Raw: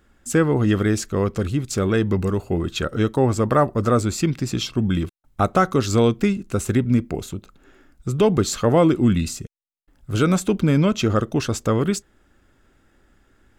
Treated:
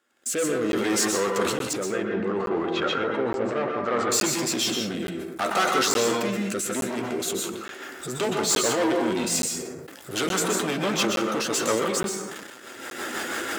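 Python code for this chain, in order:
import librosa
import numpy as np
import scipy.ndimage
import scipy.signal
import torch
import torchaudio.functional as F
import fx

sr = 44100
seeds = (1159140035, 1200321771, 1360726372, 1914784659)

y = fx.recorder_agc(x, sr, target_db=-17.5, rise_db_per_s=26.0, max_gain_db=30)
y = fx.chorus_voices(y, sr, voices=6, hz=0.21, base_ms=12, depth_ms=4.1, mix_pct=30)
y = fx.leveller(y, sr, passes=2)
y = fx.tilt_eq(y, sr, slope=1.5)
y = 10.0 ** (-17.5 / 20.0) * np.tanh(y / 10.0 ** (-17.5 / 20.0))
y = scipy.signal.sosfilt(scipy.signal.butter(2, 350.0, 'highpass', fs=sr, output='sos'), y)
y = fx.rotary_switch(y, sr, hz=0.65, then_hz=6.0, switch_at_s=6.68)
y = fx.lowpass(y, sr, hz=2200.0, slope=12, at=(1.73, 4.12))
y = fx.rev_plate(y, sr, seeds[0], rt60_s=0.69, hf_ratio=0.5, predelay_ms=110, drr_db=1.5)
y = fx.buffer_crackle(y, sr, first_s=0.72, period_s=0.87, block=512, kind='zero')
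y = fx.sustainer(y, sr, db_per_s=35.0)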